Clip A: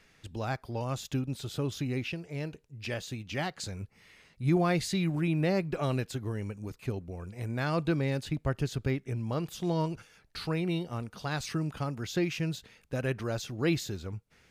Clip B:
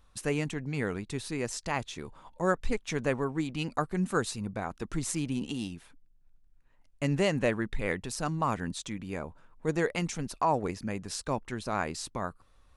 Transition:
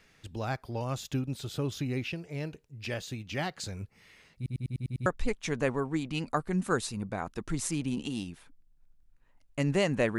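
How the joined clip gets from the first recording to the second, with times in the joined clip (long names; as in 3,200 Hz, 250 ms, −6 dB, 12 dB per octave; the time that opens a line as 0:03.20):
clip A
0:04.36: stutter in place 0.10 s, 7 plays
0:05.06: continue with clip B from 0:02.50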